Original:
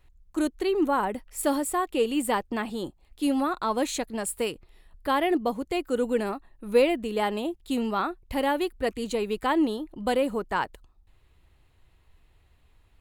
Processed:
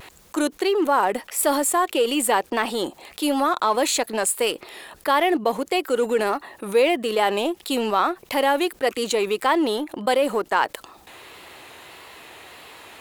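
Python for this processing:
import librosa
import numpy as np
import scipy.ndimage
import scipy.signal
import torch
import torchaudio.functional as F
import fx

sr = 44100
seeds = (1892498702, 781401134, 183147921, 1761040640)

p1 = scipy.signal.sosfilt(scipy.signal.butter(2, 410.0, 'highpass', fs=sr, output='sos'), x)
p2 = np.sign(p1) * np.maximum(np.abs(p1) - 10.0 ** (-41.0 / 20.0), 0.0)
p3 = p1 + (p2 * 10.0 ** (-3.5 / 20.0))
p4 = fx.vibrato(p3, sr, rate_hz=1.6, depth_cents=54.0)
p5 = fx.env_flatten(p4, sr, amount_pct=50)
y = p5 * 10.0 ** (-1.0 / 20.0)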